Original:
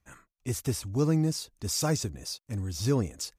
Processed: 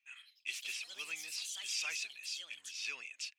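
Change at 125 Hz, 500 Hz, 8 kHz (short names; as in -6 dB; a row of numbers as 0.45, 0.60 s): under -40 dB, -32.0 dB, -7.5 dB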